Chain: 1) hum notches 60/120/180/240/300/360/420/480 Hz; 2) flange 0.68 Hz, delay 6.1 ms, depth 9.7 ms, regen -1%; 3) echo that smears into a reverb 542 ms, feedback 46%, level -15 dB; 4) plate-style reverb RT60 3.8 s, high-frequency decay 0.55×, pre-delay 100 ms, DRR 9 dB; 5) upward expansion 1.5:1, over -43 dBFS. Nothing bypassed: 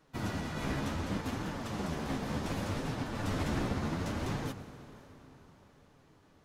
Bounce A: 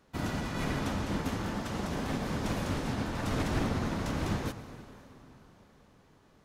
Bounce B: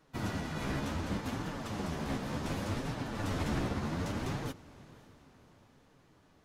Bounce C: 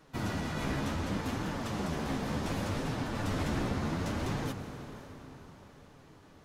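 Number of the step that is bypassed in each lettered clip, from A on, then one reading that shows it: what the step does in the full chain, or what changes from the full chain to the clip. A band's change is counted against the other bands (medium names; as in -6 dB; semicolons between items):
2, momentary loudness spread change -4 LU; 4, momentary loudness spread change -6 LU; 5, momentary loudness spread change +3 LU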